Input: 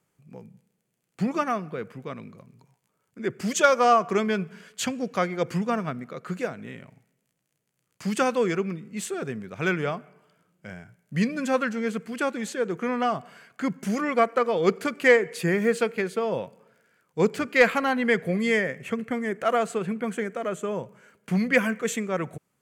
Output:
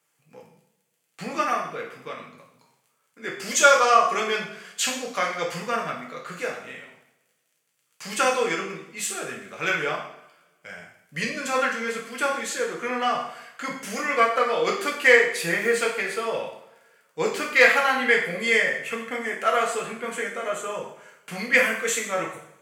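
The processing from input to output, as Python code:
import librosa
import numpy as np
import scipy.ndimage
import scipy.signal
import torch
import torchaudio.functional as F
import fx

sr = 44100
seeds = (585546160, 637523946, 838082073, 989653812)

y = fx.highpass(x, sr, hz=1200.0, slope=6)
y = fx.rev_double_slope(y, sr, seeds[0], early_s=0.59, late_s=1.5, knee_db=-20, drr_db=-2.5)
y = y * 10.0 ** (3.0 / 20.0)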